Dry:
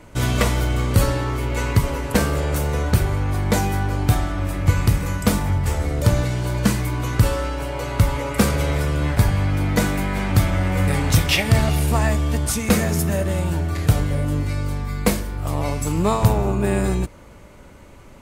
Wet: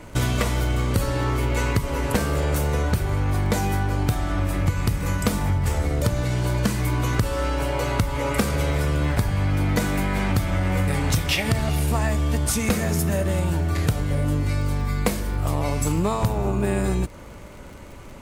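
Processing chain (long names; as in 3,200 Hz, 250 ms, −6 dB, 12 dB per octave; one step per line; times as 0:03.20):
downward compressor, threshold −22 dBFS, peak gain reduction 12.5 dB
surface crackle 40 per second −40 dBFS
level +3.5 dB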